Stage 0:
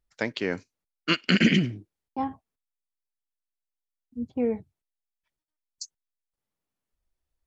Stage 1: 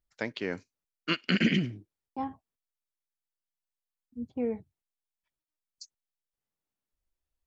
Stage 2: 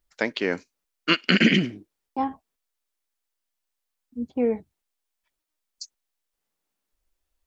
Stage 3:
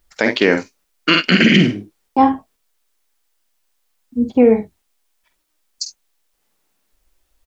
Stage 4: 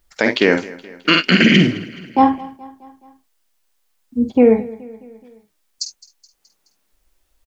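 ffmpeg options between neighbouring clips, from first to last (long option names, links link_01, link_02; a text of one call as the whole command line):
ffmpeg -i in.wav -filter_complex "[0:a]acrossover=split=5600[link_01][link_02];[link_02]acompressor=threshold=-52dB:ratio=4:attack=1:release=60[link_03];[link_01][link_03]amix=inputs=2:normalize=0,volume=-5dB" out.wav
ffmpeg -i in.wav -af "equalizer=frequency=110:width=1.5:gain=-13,volume=9dB" out.wav
ffmpeg -i in.wav -af "aecho=1:1:49|68:0.355|0.133,alimiter=level_in=14dB:limit=-1dB:release=50:level=0:latency=1,volume=-1dB" out.wav
ffmpeg -i in.wav -af "aecho=1:1:212|424|636|848:0.1|0.056|0.0314|0.0176" out.wav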